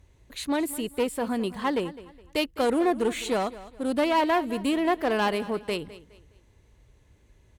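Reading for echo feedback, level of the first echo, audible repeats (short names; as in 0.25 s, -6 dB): 32%, -17.0 dB, 2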